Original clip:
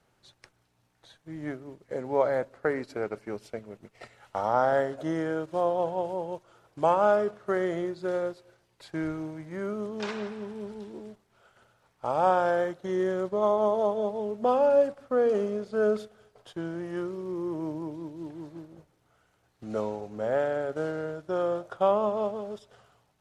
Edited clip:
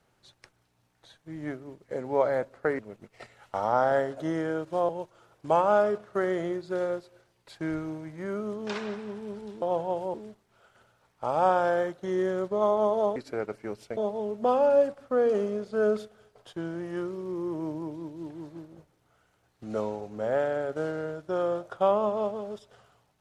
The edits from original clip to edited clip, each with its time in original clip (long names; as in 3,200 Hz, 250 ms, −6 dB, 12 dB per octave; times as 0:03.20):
0:02.79–0:03.60: move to 0:13.97
0:05.70–0:06.22: move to 0:10.95